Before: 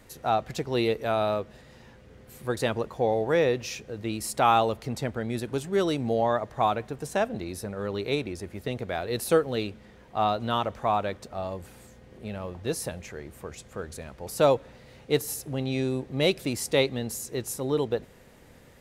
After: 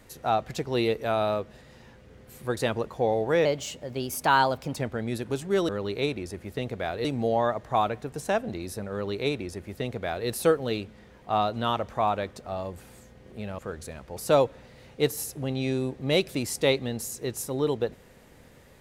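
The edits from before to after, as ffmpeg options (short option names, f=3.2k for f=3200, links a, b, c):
-filter_complex "[0:a]asplit=6[a][b][c][d][e][f];[a]atrim=end=3.454[g];[b]atrim=start=3.45:end=4.99,asetpts=PTS-STARTPTS,asetrate=51597,aresample=44100,atrim=end_sample=58046,asetpts=PTS-STARTPTS[h];[c]atrim=start=4.986:end=5.912[i];[d]atrim=start=7.778:end=9.142[j];[e]atrim=start=5.908:end=12.452[k];[f]atrim=start=13.688[l];[g][h]acrossfade=d=0.004:c1=hsin:c2=hsin[m];[m][i]acrossfade=d=0.004:c1=hsin:c2=hsin[n];[n][j]acrossfade=d=0.004:c1=hsin:c2=hsin[o];[o][k]acrossfade=d=0.004:c1=hsin:c2=hsin[p];[p][l]acrossfade=d=0.004:c1=hsin:c2=hsin"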